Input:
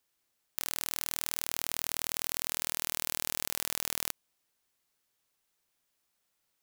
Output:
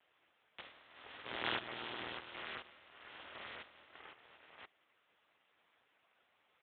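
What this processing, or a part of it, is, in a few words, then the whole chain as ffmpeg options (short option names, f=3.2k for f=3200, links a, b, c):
satellite phone: -filter_complex "[0:a]asettb=1/sr,asplit=3[a][b][c];[a]atrim=end=1.224[d];[b]atrim=start=1.22:end=2.17,asetpts=PTS-STARTPTS,afade=t=in:d=0.004:c=qsin,afade=t=out:st=0.946:d=0.004:c=qsin,bandreject=f=60:t=h:w=6,bandreject=f=120:t=h:w=6,bandreject=f=180:t=h:w=6,bandreject=f=240:t=h:w=6,bandreject=f=300:t=h:w=6,bandreject=f=360:t=h:w=6,bandreject=f=420:t=h:w=6[e];[c]atrim=start=2.166[f];[d][e]acrossfade=d=0.004:c1=hsin:c2=qsin[g];[g][f]acrossfade=d=0.004:c1=qsin:c2=hsin,highpass=330,lowpass=3.1k,aecho=1:1:527:0.112,volume=17.5dB" -ar 8000 -c:a libopencore_amrnb -b:a 5900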